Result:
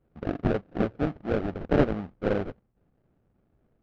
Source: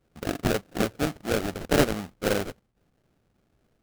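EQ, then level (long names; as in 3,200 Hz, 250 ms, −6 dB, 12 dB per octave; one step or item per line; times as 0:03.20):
head-to-tape spacing loss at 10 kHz 44 dB
+1.5 dB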